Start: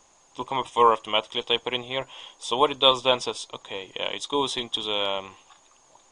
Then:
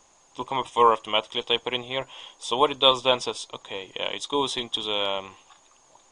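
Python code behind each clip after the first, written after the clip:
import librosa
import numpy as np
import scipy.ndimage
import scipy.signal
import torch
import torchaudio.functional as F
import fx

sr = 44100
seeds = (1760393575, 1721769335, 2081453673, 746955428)

y = x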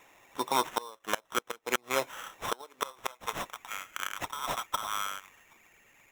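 y = fx.filter_sweep_highpass(x, sr, from_hz=210.0, to_hz=3800.0, start_s=2.31, end_s=4.11, q=0.75)
y = fx.sample_hold(y, sr, seeds[0], rate_hz=4600.0, jitter_pct=0)
y = fx.gate_flip(y, sr, shuts_db=-14.0, range_db=-28)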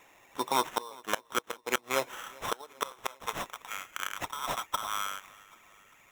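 y = fx.echo_feedback(x, sr, ms=394, feedback_pct=56, wet_db=-23.5)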